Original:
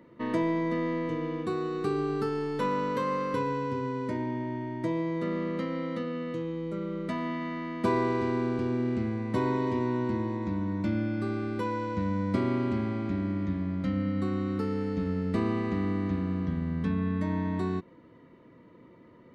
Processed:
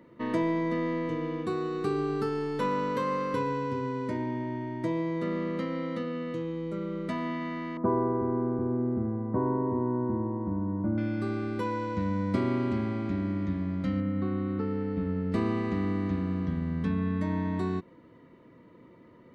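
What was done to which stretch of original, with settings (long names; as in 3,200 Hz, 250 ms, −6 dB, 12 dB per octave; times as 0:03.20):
0:07.77–0:10.98: inverse Chebyshev low-pass filter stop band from 4,000 Hz, stop band 60 dB
0:14.00–0:15.32: high-frequency loss of the air 320 metres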